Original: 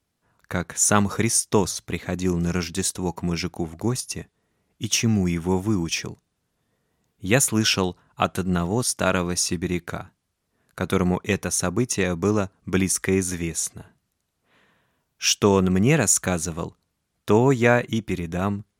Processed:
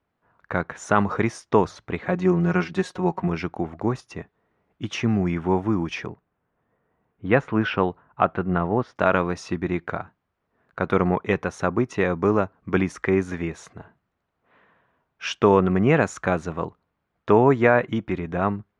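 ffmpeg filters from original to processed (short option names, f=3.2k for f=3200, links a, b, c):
-filter_complex "[0:a]asettb=1/sr,asplit=3[a][b][c];[a]atrim=end=2.034[d];[b]atrim=start=2.03:end=3.28,asetpts=PTS-STARTPTS,afade=t=in:d=0.004:c=qsin,afade=t=out:st=1.246:d=0.004:c=qsin,aecho=1:1:5.5:0.73,atrim=end_sample=55125[e];[c]atrim=start=3.276[f];[d][e]acrossfade=d=0.004:c1=hsin:c2=qsin[g];[g][f]acrossfade=d=0.004:c1=qsin:c2=hsin,asettb=1/sr,asplit=3[h][i][j];[h]atrim=end=6.074[k];[i]atrim=start=6.07:end=8.96,asetpts=PTS-STARTPTS,afade=t=in:d=0.004:c=qsin,afade=t=out:st=2.886:d=0.004:c=qsin,lowpass=2.6k[l];[j]atrim=start=8.956[m];[k][l]acrossfade=d=0.004:c1=hsin:c2=qsin[n];[n][m]acrossfade=d=0.004:c1=qsin:c2=hsin,lowpass=1.5k,lowshelf=f=400:g=-10,alimiter=level_in=9.5dB:limit=-1dB:release=50:level=0:latency=1,volume=-2.5dB"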